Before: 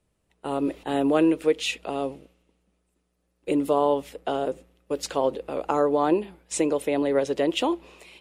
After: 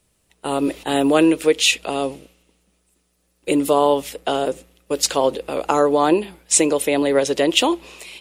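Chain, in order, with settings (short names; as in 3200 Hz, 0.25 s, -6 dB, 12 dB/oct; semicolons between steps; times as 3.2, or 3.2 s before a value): high shelf 2600 Hz +11.5 dB; gain +5 dB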